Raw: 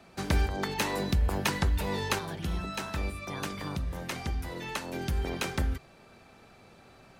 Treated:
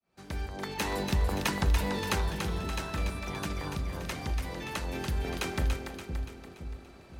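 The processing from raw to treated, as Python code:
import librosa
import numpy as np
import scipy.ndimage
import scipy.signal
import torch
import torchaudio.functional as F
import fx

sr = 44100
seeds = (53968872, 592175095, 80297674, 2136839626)

y = fx.fade_in_head(x, sr, length_s=0.95)
y = fx.echo_split(y, sr, split_hz=470.0, low_ms=513, high_ms=287, feedback_pct=52, wet_db=-6.0)
y = F.gain(torch.from_numpy(y), -1.5).numpy()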